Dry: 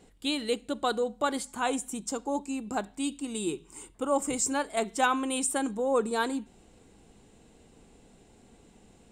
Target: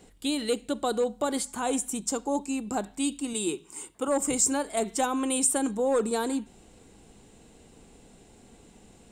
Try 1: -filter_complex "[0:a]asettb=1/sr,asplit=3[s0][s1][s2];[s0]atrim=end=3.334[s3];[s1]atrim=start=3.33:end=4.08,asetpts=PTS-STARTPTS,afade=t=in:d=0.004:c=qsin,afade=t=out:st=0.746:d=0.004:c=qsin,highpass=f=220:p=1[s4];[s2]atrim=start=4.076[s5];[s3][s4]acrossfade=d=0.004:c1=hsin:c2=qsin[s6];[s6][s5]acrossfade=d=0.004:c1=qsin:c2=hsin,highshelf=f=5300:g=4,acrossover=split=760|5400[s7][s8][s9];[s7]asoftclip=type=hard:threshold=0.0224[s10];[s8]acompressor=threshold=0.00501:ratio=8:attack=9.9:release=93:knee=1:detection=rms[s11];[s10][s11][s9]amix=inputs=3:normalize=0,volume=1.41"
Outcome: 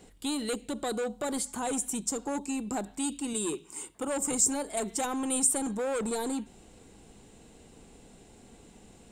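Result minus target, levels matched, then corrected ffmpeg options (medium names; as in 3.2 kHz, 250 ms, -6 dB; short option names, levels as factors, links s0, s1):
hard clipper: distortion +13 dB; compression: peak gain reduction +7.5 dB
-filter_complex "[0:a]asettb=1/sr,asplit=3[s0][s1][s2];[s0]atrim=end=3.334[s3];[s1]atrim=start=3.33:end=4.08,asetpts=PTS-STARTPTS,afade=t=in:d=0.004:c=qsin,afade=t=out:st=0.746:d=0.004:c=qsin,highpass=f=220:p=1[s4];[s2]atrim=start=4.076[s5];[s3][s4]acrossfade=d=0.004:c1=hsin:c2=qsin[s6];[s6][s5]acrossfade=d=0.004:c1=qsin:c2=hsin,highshelf=f=5300:g=4,acrossover=split=760|5400[s7][s8][s9];[s7]asoftclip=type=hard:threshold=0.0631[s10];[s8]acompressor=threshold=0.0133:ratio=8:attack=9.9:release=93:knee=1:detection=rms[s11];[s10][s11][s9]amix=inputs=3:normalize=0,volume=1.41"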